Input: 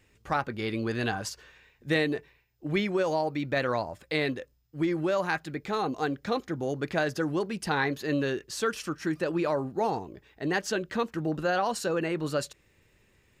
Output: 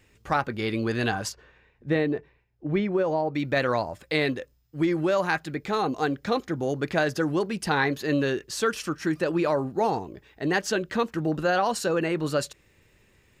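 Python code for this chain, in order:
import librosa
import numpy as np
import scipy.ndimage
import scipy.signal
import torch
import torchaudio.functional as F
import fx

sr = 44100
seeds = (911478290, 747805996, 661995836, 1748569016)

y = fx.lowpass(x, sr, hz=1000.0, slope=6, at=(1.31, 3.34), fade=0.02)
y = F.gain(torch.from_numpy(y), 3.5).numpy()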